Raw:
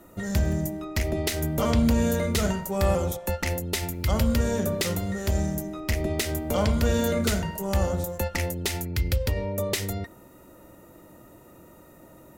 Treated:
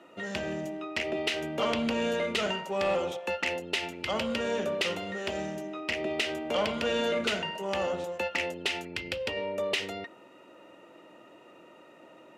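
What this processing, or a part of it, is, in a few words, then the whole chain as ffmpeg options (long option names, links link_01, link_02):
intercom: -af "highpass=340,lowpass=4000,equalizer=frequency=2800:width_type=o:width=0.45:gain=11,asoftclip=type=tanh:threshold=-19.5dB"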